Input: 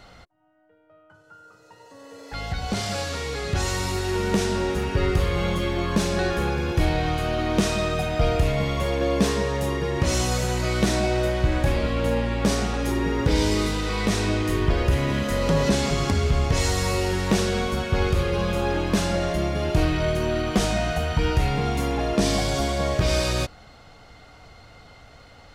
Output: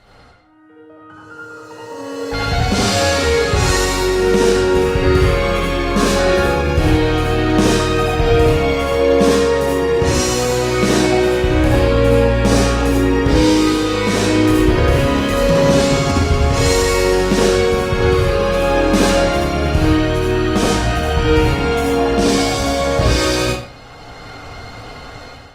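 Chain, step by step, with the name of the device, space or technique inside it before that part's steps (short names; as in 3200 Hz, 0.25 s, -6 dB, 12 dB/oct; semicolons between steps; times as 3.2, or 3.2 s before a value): speakerphone in a meeting room (reverb RT60 0.55 s, pre-delay 62 ms, DRR -4.5 dB; AGC; gain -1 dB; Opus 32 kbps 48000 Hz)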